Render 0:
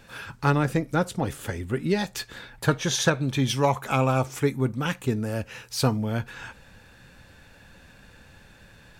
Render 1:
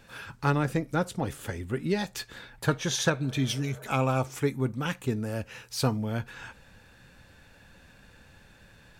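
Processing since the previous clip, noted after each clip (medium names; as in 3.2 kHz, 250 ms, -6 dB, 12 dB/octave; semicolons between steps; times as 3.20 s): spectral replace 3.24–3.84 s, 410–1700 Hz before; trim -3.5 dB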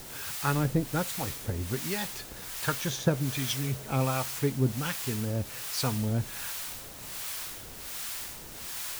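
bass shelf 140 Hz +7 dB; word length cut 6-bit, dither triangular; harmonic tremolo 1.3 Hz, depth 70%, crossover 720 Hz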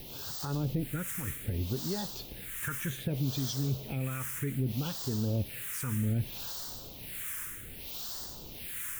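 peak limiter -22 dBFS, peak gain reduction 10.5 dB; phase shifter stages 4, 0.64 Hz, lowest notch 710–2300 Hz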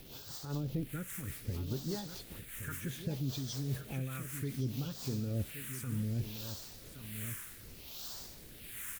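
delay 1121 ms -10 dB; rotary cabinet horn 5 Hz, later 1.2 Hz, at 4.52 s; crackle 270 per s -44 dBFS; trim -3.5 dB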